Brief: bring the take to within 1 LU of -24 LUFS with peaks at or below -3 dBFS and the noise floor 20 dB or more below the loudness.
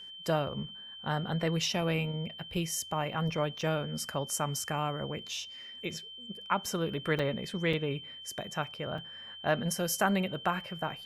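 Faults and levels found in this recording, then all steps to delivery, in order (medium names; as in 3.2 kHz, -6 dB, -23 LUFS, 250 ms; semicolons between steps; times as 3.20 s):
dropouts 5; longest dropout 4.5 ms; steady tone 3.1 kHz; tone level -44 dBFS; loudness -33.0 LUFS; peak level -13.5 dBFS; loudness target -24.0 LUFS
-> interpolate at 2.54/3.61/7.19/7.73/8.98 s, 4.5 ms; band-stop 3.1 kHz, Q 30; trim +9 dB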